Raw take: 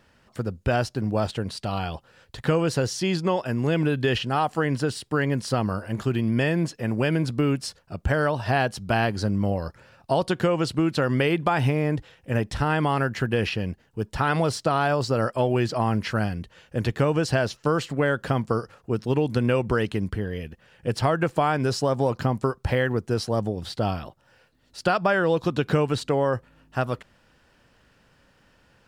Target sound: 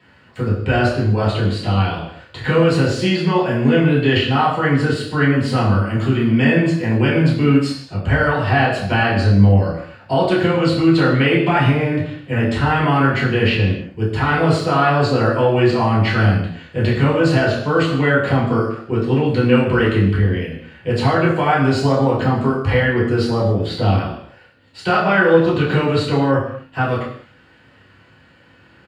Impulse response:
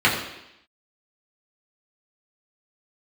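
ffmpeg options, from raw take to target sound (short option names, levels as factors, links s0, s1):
-filter_complex "[0:a]asplit=2[s0][s1];[s1]alimiter=limit=0.106:level=0:latency=1,volume=0.891[s2];[s0][s2]amix=inputs=2:normalize=0,asplit=2[s3][s4];[s4]adelay=30,volume=0.562[s5];[s3][s5]amix=inputs=2:normalize=0[s6];[1:a]atrim=start_sample=2205,afade=t=out:st=0.34:d=0.01,atrim=end_sample=15435[s7];[s6][s7]afir=irnorm=-1:irlink=0,volume=0.15"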